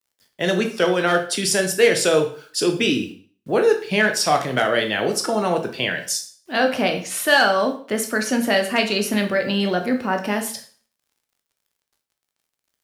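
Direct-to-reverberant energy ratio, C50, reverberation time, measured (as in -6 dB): 4.0 dB, 10.0 dB, 0.45 s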